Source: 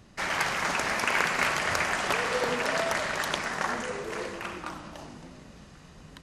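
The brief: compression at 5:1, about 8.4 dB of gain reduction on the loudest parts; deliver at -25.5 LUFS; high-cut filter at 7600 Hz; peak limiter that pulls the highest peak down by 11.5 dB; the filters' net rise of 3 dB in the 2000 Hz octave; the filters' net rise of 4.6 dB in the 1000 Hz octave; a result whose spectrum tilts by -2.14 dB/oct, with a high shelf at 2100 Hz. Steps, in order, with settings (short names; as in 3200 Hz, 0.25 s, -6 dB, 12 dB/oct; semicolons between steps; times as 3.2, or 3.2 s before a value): LPF 7600 Hz; bell 1000 Hz +6 dB; bell 2000 Hz +6 dB; high shelf 2100 Hz -8 dB; compressor 5:1, threshold -29 dBFS; gain +11 dB; limiter -16.5 dBFS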